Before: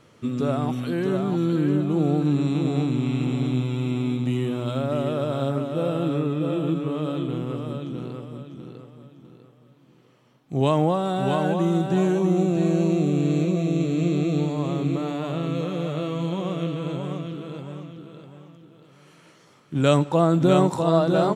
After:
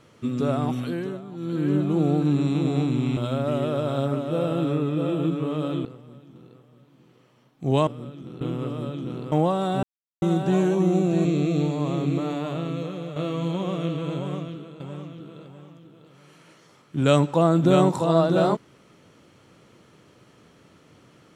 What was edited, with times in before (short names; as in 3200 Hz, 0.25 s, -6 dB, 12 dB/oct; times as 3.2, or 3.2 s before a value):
0.8–1.75 dip -14.5 dB, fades 0.41 s
3.17–4.61 cut
7.29–8.2 swap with 8.74–10.76
11.27–11.66 mute
12.69–14.03 cut
15.13–15.94 fade out, to -8 dB
17.13–17.58 fade out, to -10.5 dB